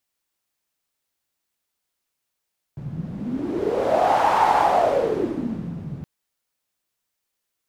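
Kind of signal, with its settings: wind-like swept noise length 3.27 s, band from 150 Hz, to 870 Hz, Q 6.4, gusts 1, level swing 14 dB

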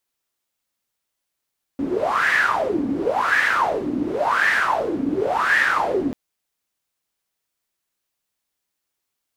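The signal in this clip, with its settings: wind-like swept noise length 4.34 s, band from 270 Hz, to 1.8 kHz, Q 9.2, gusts 4, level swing 6.5 dB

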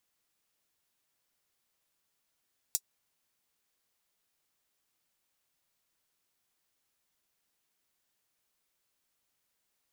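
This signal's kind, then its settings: closed hi-hat, high-pass 6 kHz, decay 0.06 s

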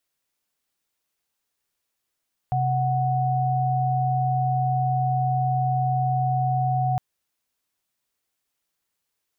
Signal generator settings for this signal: chord C3/F#5 sine, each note -22.5 dBFS 4.46 s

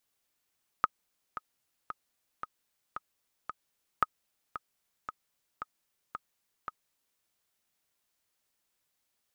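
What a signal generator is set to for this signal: metronome 113 bpm, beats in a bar 6, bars 2, 1.26 kHz, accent 13 dB -10.5 dBFS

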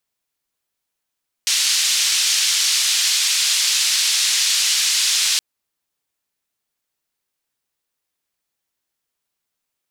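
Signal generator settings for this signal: noise band 3.4–5.7 kHz, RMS -18 dBFS 3.92 s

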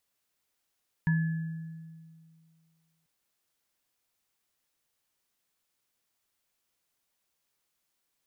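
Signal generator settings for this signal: sine partials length 1.99 s, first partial 162 Hz, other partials 954/1710 Hz, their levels -17/-10 dB, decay 2.16 s, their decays 0.21/1.15 s, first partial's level -21.5 dB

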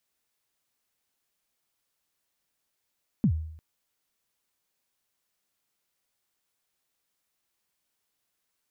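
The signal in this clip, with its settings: kick drum length 0.35 s, from 250 Hz, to 79 Hz, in 80 ms, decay 0.70 s, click off, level -16.5 dB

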